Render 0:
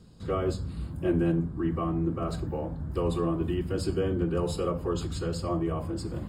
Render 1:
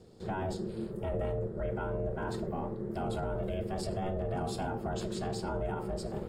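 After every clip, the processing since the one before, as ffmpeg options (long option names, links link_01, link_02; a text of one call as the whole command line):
ffmpeg -i in.wav -af "aeval=exprs='val(0)*sin(2*PI*280*n/s)':channel_layout=same,alimiter=level_in=1.5dB:limit=-24dB:level=0:latency=1:release=12,volume=-1.5dB" out.wav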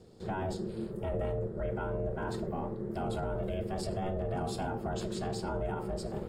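ffmpeg -i in.wav -af anull out.wav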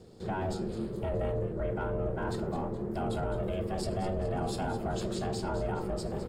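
ffmpeg -i in.wav -filter_complex "[0:a]asplit=2[link_01][link_02];[link_02]asoftclip=type=tanh:threshold=-35.5dB,volume=-8dB[link_03];[link_01][link_03]amix=inputs=2:normalize=0,asplit=6[link_04][link_05][link_06][link_07][link_08][link_09];[link_05]adelay=210,afreqshift=-120,volume=-12dB[link_10];[link_06]adelay=420,afreqshift=-240,volume=-18.4dB[link_11];[link_07]adelay=630,afreqshift=-360,volume=-24.8dB[link_12];[link_08]adelay=840,afreqshift=-480,volume=-31.1dB[link_13];[link_09]adelay=1050,afreqshift=-600,volume=-37.5dB[link_14];[link_04][link_10][link_11][link_12][link_13][link_14]amix=inputs=6:normalize=0" out.wav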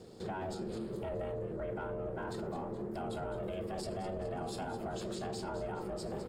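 ffmpeg -i in.wav -af "lowshelf=frequency=130:gain=-9,alimiter=level_in=9.5dB:limit=-24dB:level=0:latency=1:release=168,volume=-9.5dB,volume=2.5dB" out.wav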